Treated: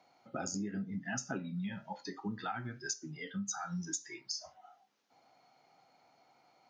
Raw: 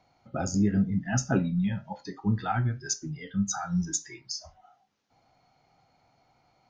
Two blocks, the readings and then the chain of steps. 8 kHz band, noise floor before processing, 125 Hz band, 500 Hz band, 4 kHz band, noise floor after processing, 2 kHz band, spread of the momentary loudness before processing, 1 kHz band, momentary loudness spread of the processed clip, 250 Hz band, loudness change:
-7.0 dB, -68 dBFS, -15.0 dB, -9.5 dB, -4.5 dB, -69 dBFS, -5.0 dB, 11 LU, -8.0 dB, 4 LU, -12.0 dB, -10.5 dB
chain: high-pass 260 Hz 12 dB/octave; dynamic bell 600 Hz, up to -5 dB, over -47 dBFS, Q 1; compression 6:1, threshold -35 dBFS, peak gain reduction 10.5 dB

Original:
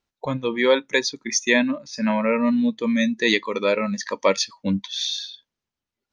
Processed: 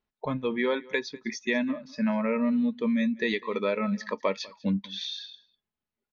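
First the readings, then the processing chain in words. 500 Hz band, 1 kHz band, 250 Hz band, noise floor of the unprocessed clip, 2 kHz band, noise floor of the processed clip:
-7.5 dB, -7.0 dB, -4.5 dB, under -85 dBFS, -8.5 dB, under -85 dBFS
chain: comb 4.7 ms, depth 34%; compression 3:1, threshold -20 dBFS, peak gain reduction 6.5 dB; distance through air 220 m; on a send: delay 197 ms -22.5 dB; on the sum: trim -3 dB

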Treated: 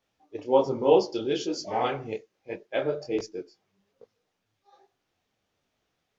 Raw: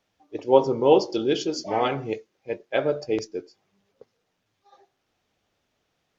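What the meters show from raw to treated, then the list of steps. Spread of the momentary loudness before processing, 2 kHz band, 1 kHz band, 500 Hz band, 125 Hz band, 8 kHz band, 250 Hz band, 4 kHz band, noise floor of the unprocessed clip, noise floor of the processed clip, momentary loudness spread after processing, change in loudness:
16 LU, -4.0 dB, -3.0 dB, -3.0 dB, -4.5 dB, no reading, -4.0 dB, -4.0 dB, -76 dBFS, -79 dBFS, 19 LU, -3.0 dB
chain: detune thickener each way 42 cents

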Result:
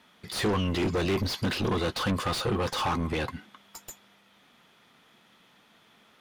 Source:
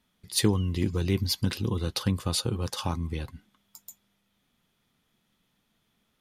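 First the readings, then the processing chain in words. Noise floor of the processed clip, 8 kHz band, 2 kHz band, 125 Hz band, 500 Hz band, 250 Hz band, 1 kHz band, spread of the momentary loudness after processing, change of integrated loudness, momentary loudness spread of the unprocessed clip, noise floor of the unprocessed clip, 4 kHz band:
-61 dBFS, -6.0 dB, +7.5 dB, -3.5 dB, +4.5 dB, 0.0 dB, +8.5 dB, 18 LU, 0.0 dB, 11 LU, -74 dBFS, -0.5 dB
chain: overdrive pedal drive 34 dB, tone 1.9 kHz, clips at -9.5 dBFS; trim -8 dB

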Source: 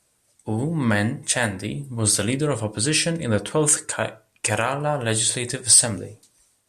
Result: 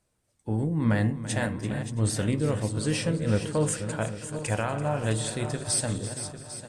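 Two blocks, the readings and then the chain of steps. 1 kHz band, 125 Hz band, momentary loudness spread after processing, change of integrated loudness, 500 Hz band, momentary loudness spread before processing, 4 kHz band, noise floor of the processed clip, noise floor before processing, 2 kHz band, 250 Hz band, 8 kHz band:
-6.5 dB, -0.5 dB, 7 LU, -7.0 dB, -4.5 dB, 15 LU, -11.0 dB, -73 dBFS, -67 dBFS, -8.5 dB, -2.5 dB, -13.0 dB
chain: backward echo that repeats 399 ms, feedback 63%, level -10 dB; tilt EQ -2 dB/octave; feedback delay 336 ms, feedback 36%, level -14.5 dB; trim -7.5 dB

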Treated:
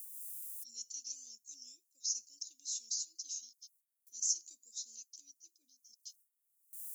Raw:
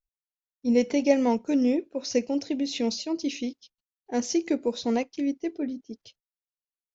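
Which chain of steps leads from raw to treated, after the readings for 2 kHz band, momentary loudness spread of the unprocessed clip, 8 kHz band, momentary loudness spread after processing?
under -40 dB, 11 LU, no reading, 18 LU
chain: upward compressor, threshold -30 dBFS; gate with hold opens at -57 dBFS; inverse Chebyshev high-pass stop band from 2.1 kHz, stop band 70 dB; trim +16 dB

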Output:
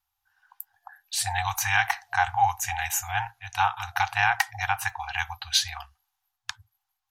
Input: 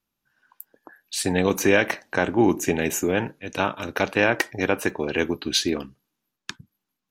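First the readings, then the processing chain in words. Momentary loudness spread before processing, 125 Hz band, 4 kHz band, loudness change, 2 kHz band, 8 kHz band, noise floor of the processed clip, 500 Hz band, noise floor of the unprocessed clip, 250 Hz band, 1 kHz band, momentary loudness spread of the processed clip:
11 LU, -5.0 dB, -0.5 dB, -3.0 dB, -0.5 dB, 0.0 dB, -82 dBFS, -21.0 dB, -83 dBFS, under -40 dB, +5.0 dB, 16 LU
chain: FFT band-reject 110–700 Hz; graphic EQ with 31 bands 800 Hz +8 dB, 2.5 kHz -3 dB, 12.5 kHz +3 dB

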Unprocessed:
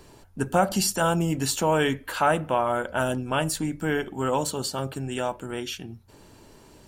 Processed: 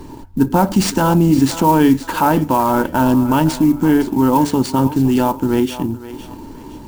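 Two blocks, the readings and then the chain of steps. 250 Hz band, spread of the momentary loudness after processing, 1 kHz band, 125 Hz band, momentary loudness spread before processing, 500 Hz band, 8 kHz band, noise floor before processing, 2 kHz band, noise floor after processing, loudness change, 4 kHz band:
+16.0 dB, 14 LU, +9.5 dB, +11.5 dB, 10 LU, +6.5 dB, +2.0 dB, -52 dBFS, +3.0 dB, -35 dBFS, +10.5 dB, +3.5 dB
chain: small resonant body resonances 280/910 Hz, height 15 dB, ringing for 30 ms; transient shaper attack -1 dB, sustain -5 dB; in parallel at -2 dB: compressor with a negative ratio -23 dBFS; on the sum: bass shelf 150 Hz +12 dB; sample-rate reducer 14 kHz, jitter 20%; on a send: thinning echo 514 ms, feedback 34%, high-pass 410 Hz, level -12.5 dB; on the sum: trim -1 dB

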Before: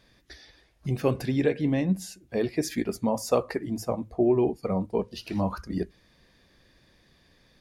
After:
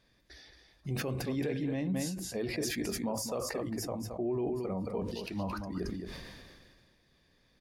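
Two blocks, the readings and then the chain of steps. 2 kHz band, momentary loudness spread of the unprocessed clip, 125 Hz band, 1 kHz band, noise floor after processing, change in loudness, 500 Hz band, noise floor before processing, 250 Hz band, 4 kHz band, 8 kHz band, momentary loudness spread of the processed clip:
-3.0 dB, 8 LU, -6.5 dB, -8.0 dB, -69 dBFS, -7.5 dB, -9.0 dB, -63 dBFS, -7.5 dB, -0.5 dB, 0.0 dB, 13 LU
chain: delay 221 ms -9 dB; peak limiter -17.5 dBFS, peak gain reduction 8 dB; decay stretcher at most 30 dB/s; trim -8 dB

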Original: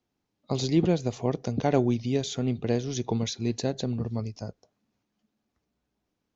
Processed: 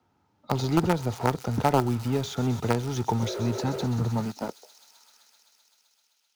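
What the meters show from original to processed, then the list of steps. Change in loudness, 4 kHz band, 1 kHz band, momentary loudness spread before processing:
+1.0 dB, -1.0 dB, +8.0 dB, 9 LU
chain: high-pass sweep 79 Hz -> 3 kHz, 3.92–5.49 s; treble shelf 3.7 kHz -6 dB; spectral replace 3.22–3.83 s, 350–730 Hz after; in parallel at -12 dB: companded quantiser 2-bit; on the sum: small resonant body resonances 900/1300 Hz, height 13 dB, ringing for 20 ms; on a send: feedback echo behind a high-pass 129 ms, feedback 80%, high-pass 4.4 kHz, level -9 dB; on the sum: three bands compressed up and down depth 40%; trim -3.5 dB

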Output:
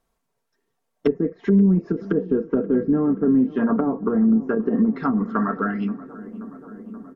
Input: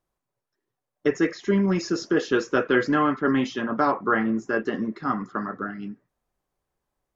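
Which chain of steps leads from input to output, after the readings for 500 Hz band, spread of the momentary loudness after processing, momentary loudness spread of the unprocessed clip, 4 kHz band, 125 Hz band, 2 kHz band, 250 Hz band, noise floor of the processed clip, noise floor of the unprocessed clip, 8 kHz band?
+1.5 dB, 18 LU, 9 LU, under -15 dB, +6.5 dB, -8.0 dB, +6.0 dB, -76 dBFS, -85 dBFS, no reading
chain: low-pass that closes with the level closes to 330 Hz, closed at -20.5 dBFS; comb 4.4 ms, depth 54%; in parallel at +1 dB: peak limiter -19.5 dBFS, peak gain reduction 9 dB; on the sum: hard clipper -9 dBFS, distortion -43 dB; on a send: filtered feedback delay 529 ms, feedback 81%, low-pass 2 kHz, level -19 dB

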